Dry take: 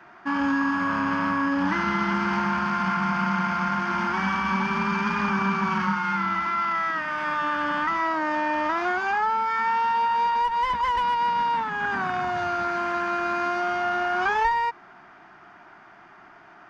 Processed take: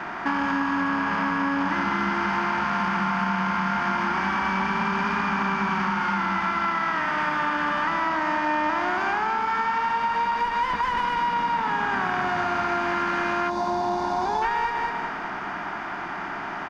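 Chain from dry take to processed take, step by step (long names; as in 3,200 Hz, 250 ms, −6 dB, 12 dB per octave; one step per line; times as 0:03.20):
compressor on every frequency bin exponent 0.6
on a send: repeating echo 198 ms, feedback 45%, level −6 dB
on the sum: gain on a spectral selection 0:13.50–0:14.42, 1,100–3,400 Hz −14 dB
downward compressor, threshold −23 dBFS, peak gain reduction 8 dB
level +1.5 dB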